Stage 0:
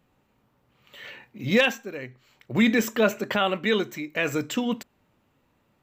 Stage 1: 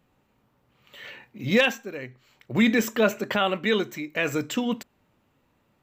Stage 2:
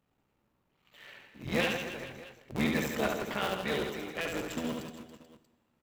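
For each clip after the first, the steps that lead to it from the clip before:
nothing audible
cycle switcher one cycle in 3, muted; reverse bouncing-ball echo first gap 70 ms, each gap 1.3×, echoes 5; plate-style reverb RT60 1.6 s, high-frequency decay 0.95×, DRR 16 dB; gain -9 dB

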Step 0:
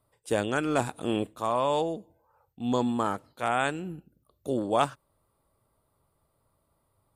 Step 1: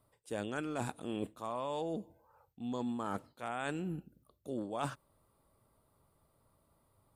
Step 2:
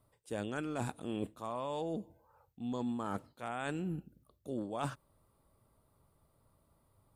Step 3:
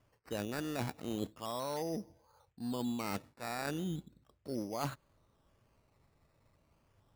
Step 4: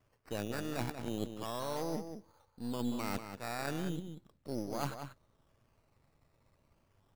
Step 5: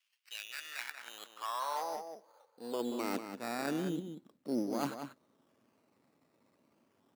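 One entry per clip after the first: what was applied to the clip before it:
bell 220 Hz +3 dB 0.84 oct; reverse; compressor 6:1, threshold -35 dBFS, peak gain reduction 15 dB; reverse
low shelf 190 Hz +4.5 dB; gain -1 dB
decimation with a swept rate 11×, swing 60% 0.36 Hz
half-wave gain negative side -7 dB; outdoor echo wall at 32 m, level -8 dB; gain +1.5 dB
high-pass sweep 2900 Hz -> 250 Hz, 0.25–3.4

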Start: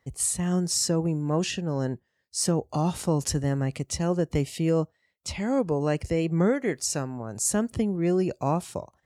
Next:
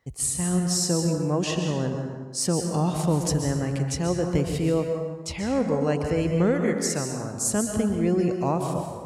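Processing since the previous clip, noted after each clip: plate-style reverb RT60 1.4 s, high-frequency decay 0.6×, pre-delay 0.115 s, DRR 3.5 dB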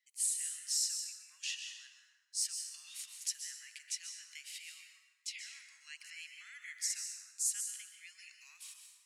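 steep high-pass 2000 Hz 36 dB/oct; gain -7 dB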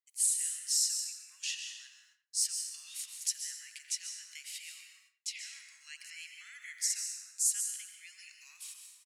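high shelf 4600 Hz +6 dB; gate with hold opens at -54 dBFS; speakerphone echo 90 ms, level -11 dB

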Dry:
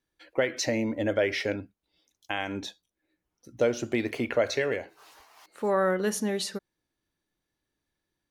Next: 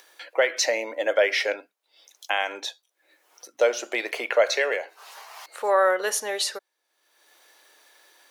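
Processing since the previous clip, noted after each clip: upward compressor, threshold -42 dBFS; HPF 510 Hz 24 dB/oct; gain +7 dB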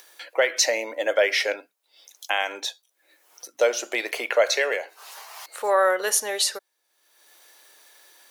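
high shelf 5700 Hz +8 dB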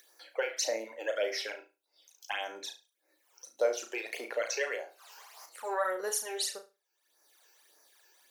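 phaser stages 12, 1.7 Hz, lowest notch 190–3400 Hz; on a send: flutter echo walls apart 6.1 m, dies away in 0.28 s; on the sum: gain -8.5 dB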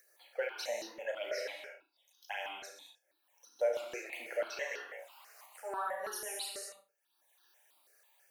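non-linear reverb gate 0.25 s flat, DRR 1 dB; step phaser 6.1 Hz 930–2200 Hz; gain -4 dB

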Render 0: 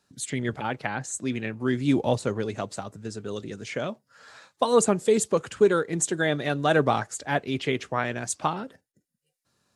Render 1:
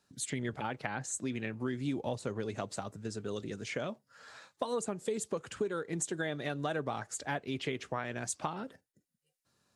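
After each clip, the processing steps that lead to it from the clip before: compressor 6:1, threshold -28 dBFS, peak gain reduction 13.5 dB; gain -3.5 dB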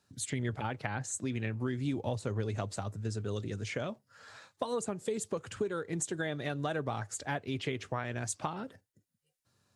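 bell 100 Hz +11.5 dB 0.56 oct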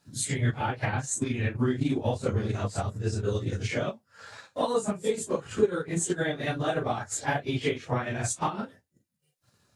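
phase scrambler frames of 0.1 s; transient shaper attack +4 dB, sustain -6 dB; gain +6 dB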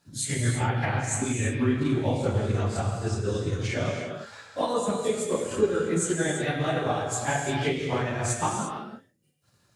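non-linear reverb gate 0.37 s flat, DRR 1.5 dB

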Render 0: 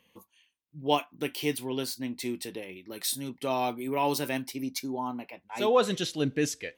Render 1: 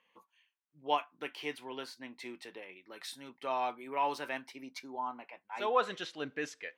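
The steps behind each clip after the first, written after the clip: band-pass 1300 Hz, Q 1.1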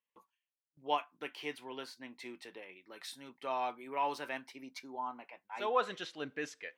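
gate with hold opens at -56 dBFS; gain -2 dB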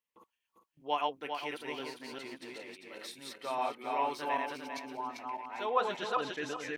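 regenerating reverse delay 0.199 s, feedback 53%, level -1 dB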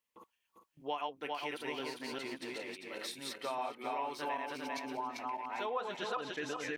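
compressor 4:1, threshold -39 dBFS, peak gain reduction 13.5 dB; gain +3.5 dB

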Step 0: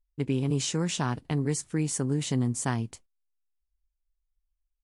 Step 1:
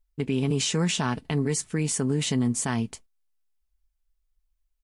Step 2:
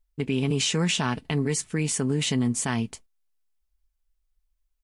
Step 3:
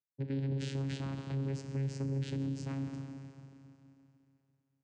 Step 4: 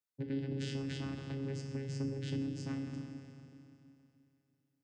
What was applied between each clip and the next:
comb 4.6 ms, depth 34%; dynamic EQ 2600 Hz, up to +4 dB, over -49 dBFS, Q 1.1; limiter -20.5 dBFS, peak gain reduction 6.5 dB; gain +4 dB
dynamic EQ 2600 Hz, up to +4 dB, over -44 dBFS, Q 1.3
Schroeder reverb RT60 2.8 s, combs from 30 ms, DRR 5.5 dB; vocoder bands 8, saw 136 Hz; limiter -22 dBFS, peak gain reduction 7 dB; gain -7 dB
resonator 250 Hz, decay 0.34 s, harmonics all, mix 70%; FDN reverb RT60 0.72 s, low-frequency decay 1.6×, high-frequency decay 0.9×, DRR 7 dB; gain +8 dB

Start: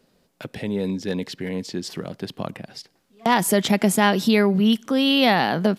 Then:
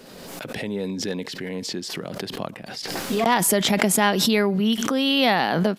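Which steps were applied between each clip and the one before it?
low shelf 160 Hz -8 dB; backwards sustainer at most 30 dB/s; gain -1 dB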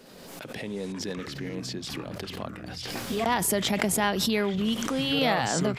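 echoes that change speed 0.334 s, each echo -7 st, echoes 3, each echo -6 dB; gain -6 dB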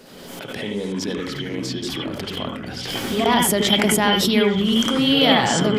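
on a send at -5 dB: synth low-pass 3200 Hz, resonance Q 12 + reverb RT60 0.15 s, pre-delay 73 ms; on the sum: gain +5.5 dB

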